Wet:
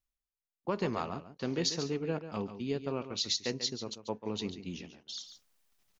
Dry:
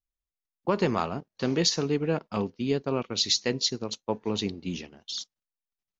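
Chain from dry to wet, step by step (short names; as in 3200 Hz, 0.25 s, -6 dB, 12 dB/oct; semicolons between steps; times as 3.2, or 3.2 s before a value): reverse; upward compressor, threshold -45 dBFS; reverse; echo 0.141 s -11 dB; gain -7.5 dB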